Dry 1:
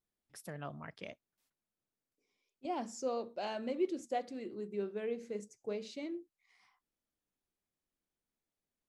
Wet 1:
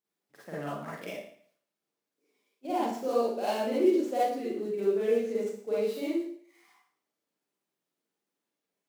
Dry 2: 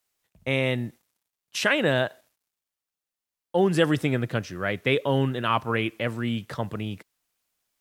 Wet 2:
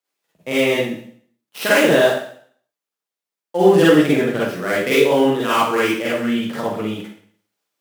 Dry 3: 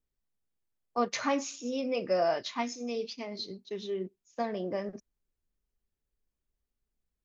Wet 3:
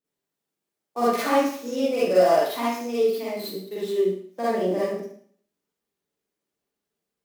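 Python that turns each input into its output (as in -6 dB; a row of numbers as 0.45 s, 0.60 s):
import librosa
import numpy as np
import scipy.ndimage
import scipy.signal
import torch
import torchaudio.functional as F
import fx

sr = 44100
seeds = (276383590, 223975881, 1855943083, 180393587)

y = fx.dead_time(x, sr, dead_ms=0.074)
y = scipy.signal.sosfilt(scipy.signal.butter(2, 300.0, 'highpass', fs=sr, output='sos'), y)
y = fx.low_shelf(y, sr, hz=480.0, db=8.5)
y = fx.rev_schroeder(y, sr, rt60_s=0.56, comb_ms=38, drr_db=-8.5)
y = F.gain(torch.from_numpy(y), -2.0).numpy()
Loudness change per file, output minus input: +10.5 LU, +8.5 LU, +9.5 LU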